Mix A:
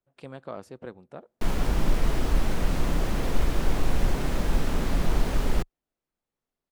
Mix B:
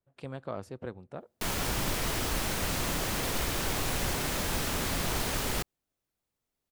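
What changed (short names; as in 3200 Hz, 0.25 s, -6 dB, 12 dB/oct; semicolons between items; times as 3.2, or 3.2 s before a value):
background: add tilt +3 dB/oct; master: add bell 93 Hz +9 dB 0.92 oct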